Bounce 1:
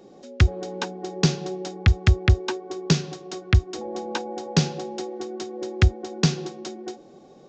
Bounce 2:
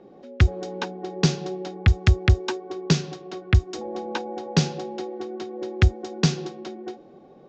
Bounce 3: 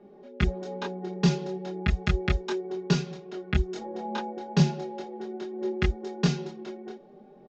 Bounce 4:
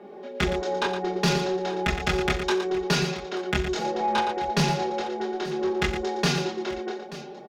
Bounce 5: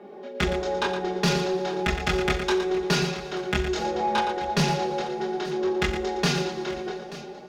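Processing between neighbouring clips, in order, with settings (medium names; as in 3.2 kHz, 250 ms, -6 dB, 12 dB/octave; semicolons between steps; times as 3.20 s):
level-controlled noise filter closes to 2.4 kHz, open at -16 dBFS
treble shelf 3.9 kHz -7 dB; comb 4.9 ms, depth 96%; chorus voices 4, 0.33 Hz, delay 25 ms, depth 3.8 ms; trim -2.5 dB
overdrive pedal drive 24 dB, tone 5.4 kHz, clips at -9 dBFS; multi-tap echo 42/88/116/883 ms -12/-16/-9.5/-16.5 dB; trim -4 dB
plate-style reverb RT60 3.8 s, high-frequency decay 0.8×, DRR 13.5 dB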